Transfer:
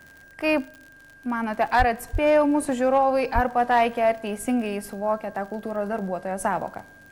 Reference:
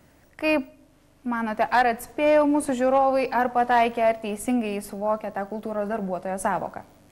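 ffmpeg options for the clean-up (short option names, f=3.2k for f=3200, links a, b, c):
-filter_complex "[0:a]adeclick=t=4,bandreject=f=1.6k:w=30,asplit=3[a][b][c];[a]afade=t=out:st=1.78:d=0.02[d];[b]highpass=f=140:w=0.5412,highpass=f=140:w=1.3066,afade=t=in:st=1.78:d=0.02,afade=t=out:st=1.9:d=0.02[e];[c]afade=t=in:st=1.9:d=0.02[f];[d][e][f]amix=inputs=3:normalize=0,asplit=3[g][h][i];[g]afade=t=out:st=2.12:d=0.02[j];[h]highpass=f=140:w=0.5412,highpass=f=140:w=1.3066,afade=t=in:st=2.12:d=0.02,afade=t=out:st=2.24:d=0.02[k];[i]afade=t=in:st=2.24:d=0.02[l];[j][k][l]amix=inputs=3:normalize=0,asplit=3[m][n][o];[m]afade=t=out:st=3.34:d=0.02[p];[n]highpass=f=140:w=0.5412,highpass=f=140:w=1.3066,afade=t=in:st=3.34:d=0.02,afade=t=out:st=3.46:d=0.02[q];[o]afade=t=in:st=3.46:d=0.02[r];[p][q][r]amix=inputs=3:normalize=0"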